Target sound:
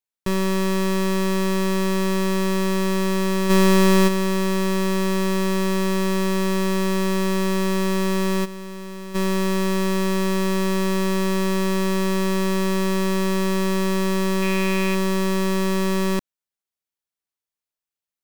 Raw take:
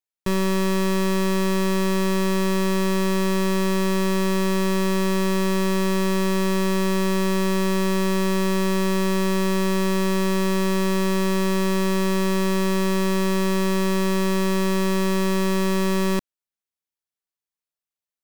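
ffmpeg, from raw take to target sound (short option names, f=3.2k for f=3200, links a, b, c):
-filter_complex "[0:a]asplit=3[a][b][c];[a]afade=t=out:st=3.49:d=0.02[d];[b]acontrast=63,afade=t=in:st=3.49:d=0.02,afade=t=out:st=4.07:d=0.02[e];[c]afade=t=in:st=4.07:d=0.02[f];[d][e][f]amix=inputs=3:normalize=0,asplit=3[g][h][i];[g]afade=t=out:st=8.44:d=0.02[j];[h]asoftclip=type=hard:threshold=-33.5dB,afade=t=in:st=8.44:d=0.02,afade=t=out:st=9.14:d=0.02[k];[i]afade=t=in:st=9.14:d=0.02[l];[j][k][l]amix=inputs=3:normalize=0,asettb=1/sr,asplit=3[m][n][o];[m]atrim=end=14.424[p];[n]atrim=start=14.42:end=14.95,asetpts=PTS-STARTPTS,afade=t=in:d=0.004:c=qsin,afade=t=out:st=0.526:d=0.004:c=qsin,equalizer=f=2.4k:t=o:w=0.43:g=11[q];[o]atrim=start=14.946[r];[p][q]acrossfade=d=0.004:c1=hsin:c2=qsin[s];[s][r]acrossfade=d=0.004:c1=qsin:c2=hsin"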